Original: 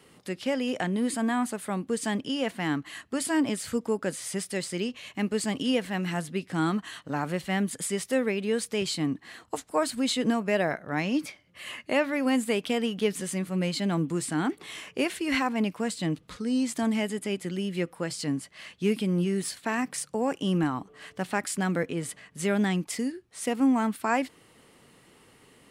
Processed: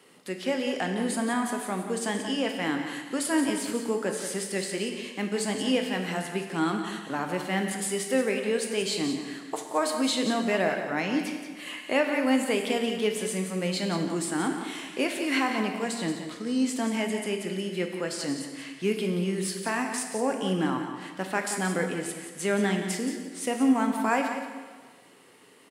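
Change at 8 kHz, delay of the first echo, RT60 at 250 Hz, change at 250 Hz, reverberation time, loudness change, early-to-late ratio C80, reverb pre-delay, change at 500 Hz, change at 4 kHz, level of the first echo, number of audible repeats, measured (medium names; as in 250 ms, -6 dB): +1.5 dB, 177 ms, 1.5 s, -0.5 dB, 1.5 s, +0.5 dB, 5.5 dB, 6 ms, +1.5 dB, +1.5 dB, -9.5 dB, 1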